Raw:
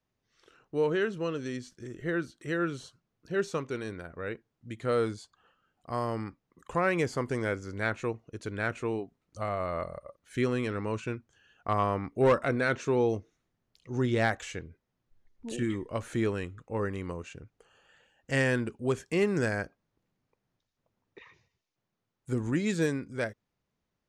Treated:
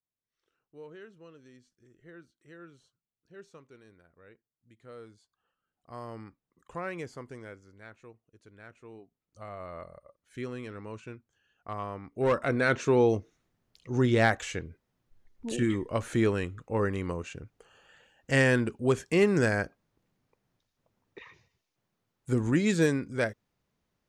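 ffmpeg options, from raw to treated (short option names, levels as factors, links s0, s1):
-af "volume=4.73,afade=t=in:st=5.11:d=1.06:silence=0.298538,afade=t=out:st=6.81:d=0.98:silence=0.316228,afade=t=in:st=8.79:d=0.86:silence=0.316228,afade=t=in:st=12.05:d=0.73:silence=0.237137"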